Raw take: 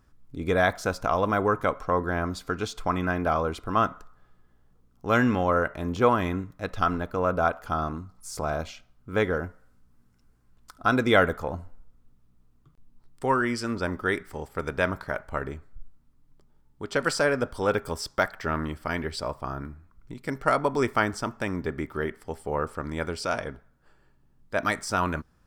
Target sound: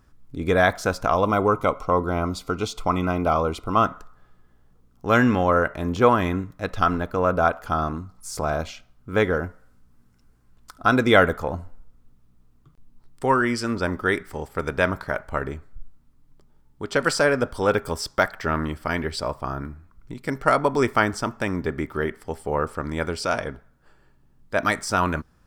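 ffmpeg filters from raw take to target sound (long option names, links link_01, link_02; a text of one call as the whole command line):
ffmpeg -i in.wav -filter_complex "[0:a]asettb=1/sr,asplit=3[link_01][link_02][link_03];[link_01]atrim=end=1.154[link_04];[link_02]atrim=start=1.15:end=3.85,asetpts=PTS-STARTPTS,afade=type=in:duration=0.004:curve=qsin,afade=type=out:start_time=2.696:duration=0.004:curve=qsin,asuperstop=centerf=1700:order=4:qfactor=3.3[link_05];[link_03]atrim=start=3.846[link_06];[link_04][link_05]acrossfade=duration=0.004:curve1=hsin:curve2=qsin[link_07];[link_07][link_06]acrossfade=duration=0.004:curve1=qsin:curve2=hsin,volume=4dB" out.wav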